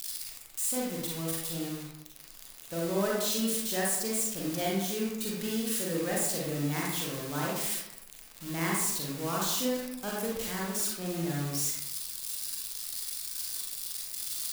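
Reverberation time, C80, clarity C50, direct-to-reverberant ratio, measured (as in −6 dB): 0.85 s, 3.5 dB, −0.5 dB, −4.0 dB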